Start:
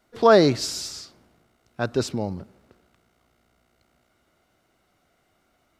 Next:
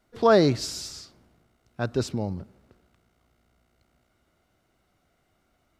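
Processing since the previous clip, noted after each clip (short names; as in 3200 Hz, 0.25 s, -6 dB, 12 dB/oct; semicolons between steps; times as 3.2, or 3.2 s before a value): low shelf 160 Hz +7.5 dB; gain -4 dB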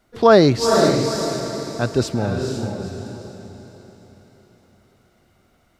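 diffused feedback echo 0.472 s, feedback 42%, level -3.5 dB; gain +6.5 dB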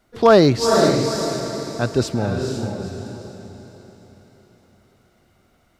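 hard clip -4.5 dBFS, distortion -27 dB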